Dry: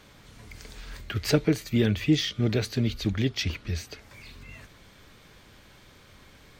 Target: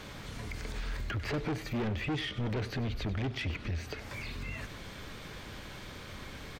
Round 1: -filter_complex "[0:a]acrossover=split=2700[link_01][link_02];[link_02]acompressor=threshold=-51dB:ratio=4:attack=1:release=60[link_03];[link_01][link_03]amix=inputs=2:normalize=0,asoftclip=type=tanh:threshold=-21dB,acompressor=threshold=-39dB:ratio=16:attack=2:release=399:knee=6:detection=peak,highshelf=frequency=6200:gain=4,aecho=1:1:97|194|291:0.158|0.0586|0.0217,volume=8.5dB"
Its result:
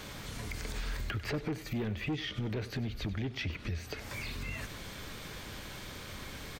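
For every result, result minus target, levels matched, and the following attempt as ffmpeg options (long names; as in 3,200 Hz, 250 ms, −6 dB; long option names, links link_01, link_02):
8,000 Hz band +5.0 dB; soft clipping: distortion −7 dB
-filter_complex "[0:a]acrossover=split=2700[link_01][link_02];[link_02]acompressor=threshold=-51dB:ratio=4:attack=1:release=60[link_03];[link_01][link_03]amix=inputs=2:normalize=0,asoftclip=type=tanh:threshold=-21dB,acompressor=threshold=-39dB:ratio=16:attack=2:release=399:knee=6:detection=peak,highshelf=frequency=6200:gain=-5,aecho=1:1:97|194|291:0.158|0.0586|0.0217,volume=8.5dB"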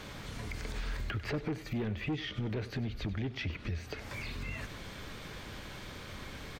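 soft clipping: distortion −7 dB
-filter_complex "[0:a]acrossover=split=2700[link_01][link_02];[link_02]acompressor=threshold=-51dB:ratio=4:attack=1:release=60[link_03];[link_01][link_03]amix=inputs=2:normalize=0,asoftclip=type=tanh:threshold=-30.5dB,acompressor=threshold=-39dB:ratio=16:attack=2:release=399:knee=6:detection=peak,highshelf=frequency=6200:gain=-5,aecho=1:1:97|194|291:0.158|0.0586|0.0217,volume=8.5dB"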